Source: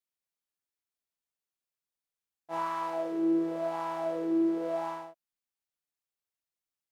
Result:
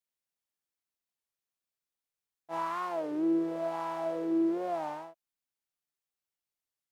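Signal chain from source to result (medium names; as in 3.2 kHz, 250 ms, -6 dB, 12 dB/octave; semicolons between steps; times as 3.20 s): warped record 33 1/3 rpm, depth 160 cents; trim -1 dB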